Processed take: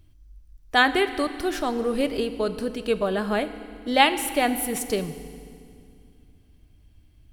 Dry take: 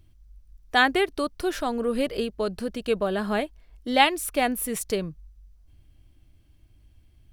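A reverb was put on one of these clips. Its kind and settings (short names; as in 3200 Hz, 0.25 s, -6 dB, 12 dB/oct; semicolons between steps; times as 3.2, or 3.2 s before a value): FDN reverb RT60 2.3 s, low-frequency decay 1.4×, high-frequency decay 0.95×, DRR 10.5 dB; gain +1 dB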